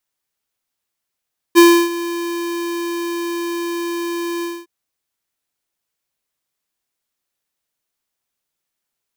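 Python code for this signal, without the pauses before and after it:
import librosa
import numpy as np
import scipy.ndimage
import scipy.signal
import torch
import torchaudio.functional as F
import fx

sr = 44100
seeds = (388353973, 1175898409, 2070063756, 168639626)

y = fx.adsr_tone(sr, wave='square', hz=342.0, attack_ms=32.0, decay_ms=305.0, sustain_db=-17.0, held_s=2.88, release_ms=231.0, level_db=-6.0)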